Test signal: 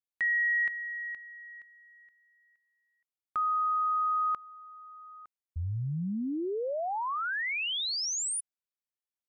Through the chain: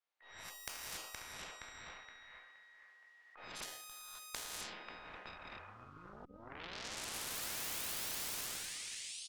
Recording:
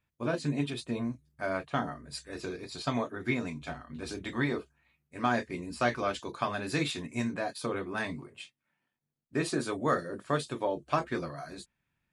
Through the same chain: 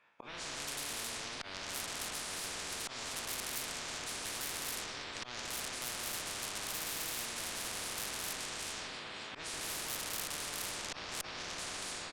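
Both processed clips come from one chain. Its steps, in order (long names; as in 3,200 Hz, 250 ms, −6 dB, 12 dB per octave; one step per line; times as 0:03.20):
peak hold with a decay on every bin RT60 0.58 s
automatic gain control gain up to 14.5 dB
high-pass filter 670 Hz 12 dB per octave
on a send: repeating echo 539 ms, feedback 23%, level −18.5 dB
on the sum: reverb whose tail is shaped and stops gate 300 ms rising, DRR −3 dB
in parallel at −1 dB: downward compressor 6 to 1, threshold −28 dBFS
on the sum: volume swells 361 ms
head-to-tape spacing loss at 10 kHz 28 dB
tube saturation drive 24 dB, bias 0.4
every bin compressed towards the loudest bin 10 to 1
level +2 dB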